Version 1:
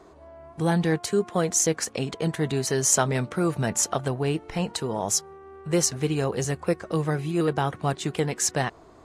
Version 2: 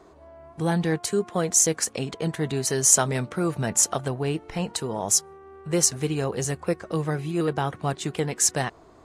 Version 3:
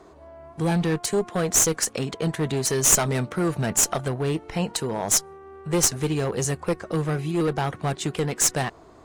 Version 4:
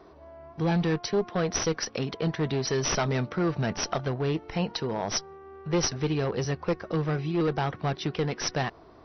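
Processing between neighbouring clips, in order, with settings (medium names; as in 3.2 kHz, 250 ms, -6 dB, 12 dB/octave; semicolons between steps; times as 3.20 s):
dynamic bell 9.6 kHz, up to +7 dB, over -39 dBFS, Q 0.74; trim -1 dB
one-sided clip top -22 dBFS; trim +2.5 dB
brick-wall FIR low-pass 6 kHz; trim -2.5 dB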